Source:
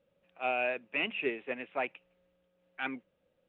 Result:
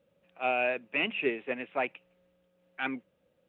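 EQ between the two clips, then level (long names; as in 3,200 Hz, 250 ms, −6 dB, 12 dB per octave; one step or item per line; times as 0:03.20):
high-pass filter 150 Hz 6 dB per octave
low-shelf EQ 190 Hz +8.5 dB
+2.5 dB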